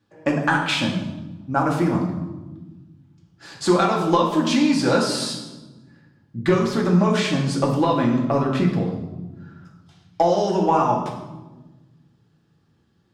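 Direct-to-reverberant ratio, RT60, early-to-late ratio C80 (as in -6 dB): -1.5 dB, 1.2 s, 8.0 dB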